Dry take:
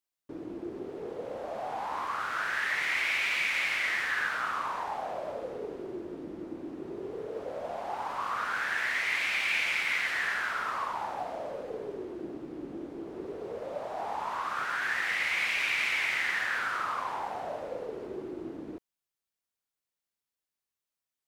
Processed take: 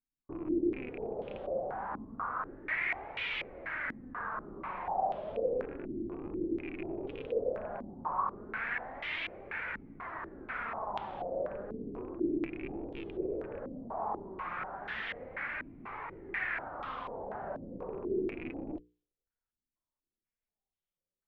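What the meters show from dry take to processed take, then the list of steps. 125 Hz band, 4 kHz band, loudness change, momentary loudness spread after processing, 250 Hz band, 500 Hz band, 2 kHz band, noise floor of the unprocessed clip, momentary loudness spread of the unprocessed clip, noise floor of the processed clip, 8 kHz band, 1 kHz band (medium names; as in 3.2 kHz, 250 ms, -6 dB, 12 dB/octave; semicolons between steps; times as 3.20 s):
+3.0 dB, -12.5 dB, -6.0 dB, 8 LU, +4.0 dB, +1.0 dB, -9.5 dB, under -85 dBFS, 14 LU, under -85 dBFS, under -30 dB, -4.0 dB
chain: rattle on loud lows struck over -45 dBFS, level -29 dBFS; tilt EQ -4 dB/octave; flange 0.31 Hz, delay 2 ms, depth 3.7 ms, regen +58%; hum notches 60/120/180/240/300/360/420/480 Hz; step-sequenced low-pass 4.1 Hz 250–3300 Hz; trim -3.5 dB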